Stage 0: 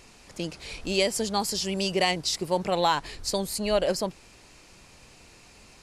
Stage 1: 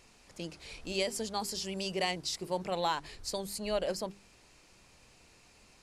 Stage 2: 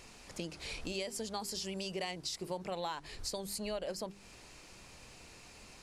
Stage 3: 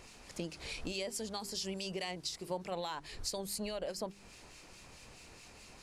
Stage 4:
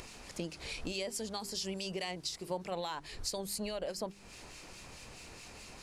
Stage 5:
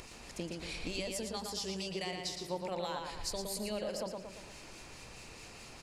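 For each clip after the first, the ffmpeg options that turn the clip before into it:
-af "bandreject=f=50:t=h:w=6,bandreject=f=100:t=h:w=6,bandreject=f=150:t=h:w=6,bandreject=f=200:t=h:w=6,bandreject=f=250:t=h:w=6,bandreject=f=300:t=h:w=6,bandreject=f=350:t=h:w=6,bandreject=f=400:t=h:w=6,volume=-8dB"
-af "acompressor=threshold=-44dB:ratio=4,volume=6dB"
-filter_complex "[0:a]acrossover=split=1800[a][b];[a]aeval=exprs='val(0)*(1-0.5/2+0.5/2*cos(2*PI*4.7*n/s))':c=same[c];[b]aeval=exprs='val(0)*(1-0.5/2-0.5/2*cos(2*PI*4.7*n/s))':c=same[d];[c][d]amix=inputs=2:normalize=0,volume=2dB"
-af "acompressor=mode=upward:threshold=-45dB:ratio=2.5,volume=1dB"
-filter_complex "[0:a]asplit=2[a][b];[b]adelay=115,lowpass=f=4.7k:p=1,volume=-3.5dB,asplit=2[c][d];[d]adelay=115,lowpass=f=4.7k:p=1,volume=0.52,asplit=2[e][f];[f]adelay=115,lowpass=f=4.7k:p=1,volume=0.52,asplit=2[g][h];[h]adelay=115,lowpass=f=4.7k:p=1,volume=0.52,asplit=2[i][j];[j]adelay=115,lowpass=f=4.7k:p=1,volume=0.52,asplit=2[k][l];[l]adelay=115,lowpass=f=4.7k:p=1,volume=0.52,asplit=2[m][n];[n]adelay=115,lowpass=f=4.7k:p=1,volume=0.52[o];[a][c][e][g][i][k][m][o]amix=inputs=8:normalize=0,volume=-1.5dB"

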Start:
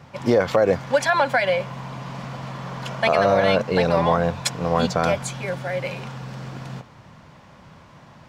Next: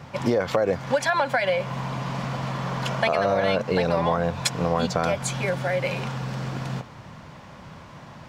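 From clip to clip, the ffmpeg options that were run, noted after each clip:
-af "acompressor=threshold=-25dB:ratio=3,volume=4dB"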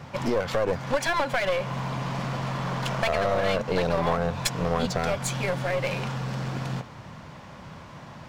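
-af "aeval=exprs='clip(val(0),-1,0.0447)':c=same"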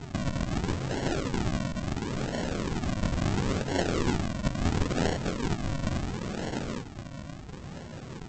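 -af "afftfilt=real='re*lt(hypot(re,im),0.251)':imag='im*lt(hypot(re,im),0.251)':win_size=1024:overlap=0.75,aresample=16000,acrusher=samples=26:mix=1:aa=0.000001:lfo=1:lforange=26:lforate=0.73,aresample=44100,volume=2dB"

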